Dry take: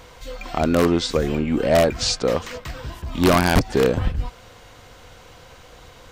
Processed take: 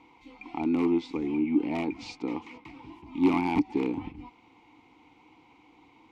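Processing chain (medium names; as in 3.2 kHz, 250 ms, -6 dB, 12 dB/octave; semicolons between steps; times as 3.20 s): vowel filter u; trim +3.5 dB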